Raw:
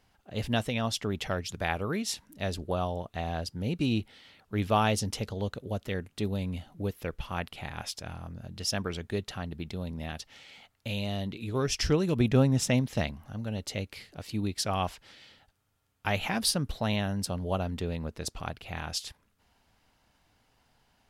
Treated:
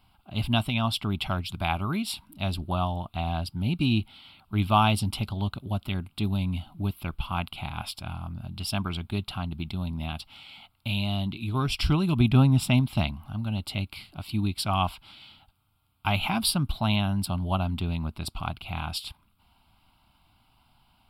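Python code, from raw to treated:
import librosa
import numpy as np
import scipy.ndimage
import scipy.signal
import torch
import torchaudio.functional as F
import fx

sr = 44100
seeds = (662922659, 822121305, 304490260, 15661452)

y = fx.fixed_phaser(x, sr, hz=1800.0, stages=6)
y = y * 10.0 ** (6.5 / 20.0)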